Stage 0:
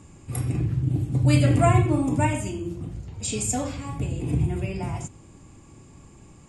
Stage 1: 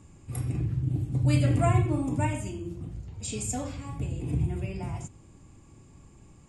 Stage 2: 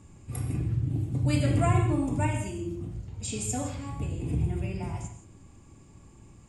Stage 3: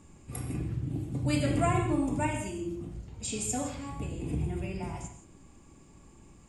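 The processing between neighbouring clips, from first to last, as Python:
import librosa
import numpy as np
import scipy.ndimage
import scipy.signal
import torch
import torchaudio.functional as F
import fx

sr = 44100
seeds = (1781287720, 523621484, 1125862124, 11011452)

y1 = fx.low_shelf(x, sr, hz=120.0, db=5.0)
y1 = F.gain(torch.from_numpy(y1), -6.5).numpy()
y2 = fx.rev_gated(y1, sr, seeds[0], gate_ms=190, shape='flat', drr_db=7.0)
y3 = fx.peak_eq(y2, sr, hz=100.0, db=-9.0, octaves=0.84)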